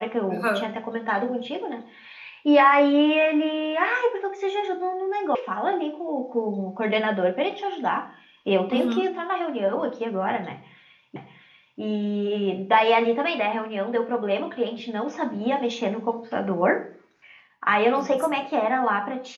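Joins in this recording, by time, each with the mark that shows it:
5.35 s: sound stops dead
11.16 s: repeat of the last 0.64 s

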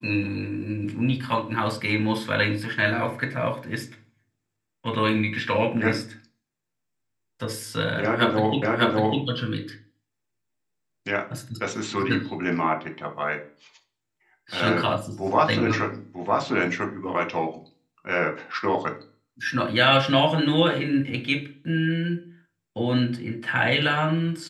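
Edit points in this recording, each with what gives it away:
8.62 s: repeat of the last 0.6 s

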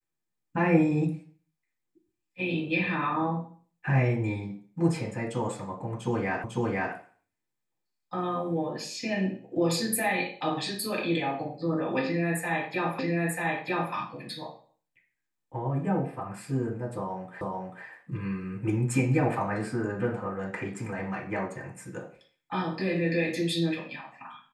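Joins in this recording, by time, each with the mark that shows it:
6.44 s: repeat of the last 0.5 s
12.99 s: repeat of the last 0.94 s
17.41 s: repeat of the last 0.44 s

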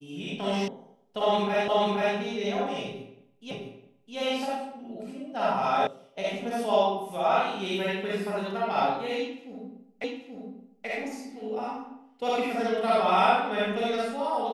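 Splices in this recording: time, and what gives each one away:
0.68 s: sound stops dead
1.68 s: repeat of the last 0.48 s
3.51 s: repeat of the last 0.66 s
5.87 s: sound stops dead
10.04 s: repeat of the last 0.83 s

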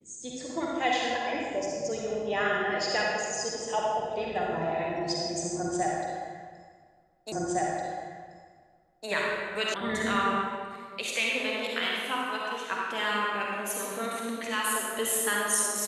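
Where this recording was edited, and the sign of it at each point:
7.32 s: repeat of the last 1.76 s
9.74 s: sound stops dead

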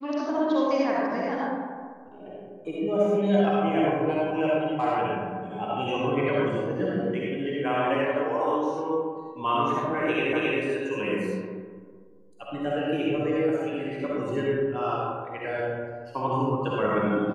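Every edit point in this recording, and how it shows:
10.33 s: repeat of the last 0.27 s

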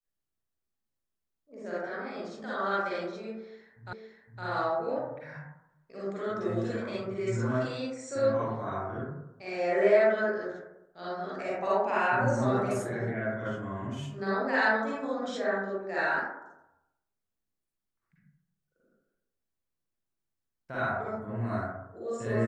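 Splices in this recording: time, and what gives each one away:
3.93 s: repeat of the last 0.51 s

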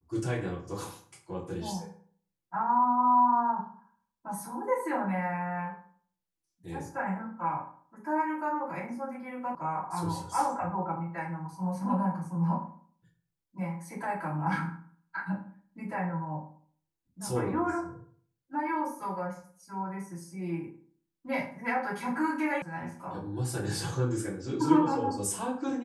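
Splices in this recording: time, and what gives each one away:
9.55 s: sound stops dead
22.62 s: sound stops dead

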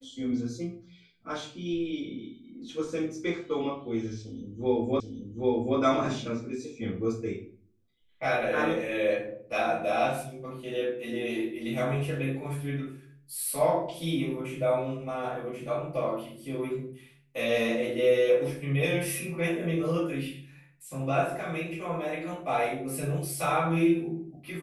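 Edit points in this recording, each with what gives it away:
5.00 s: repeat of the last 0.78 s

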